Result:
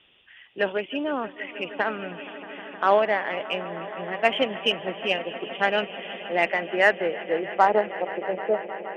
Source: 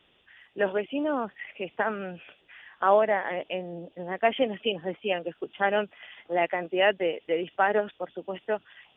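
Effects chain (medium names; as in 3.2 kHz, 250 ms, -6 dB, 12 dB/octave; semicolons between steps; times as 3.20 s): low-pass sweep 3 kHz -> 430 Hz, 6.14–8.90 s; echo with a slow build-up 157 ms, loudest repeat 5, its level -18 dB; Chebyshev shaper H 7 -33 dB, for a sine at -6 dBFS; trim +1 dB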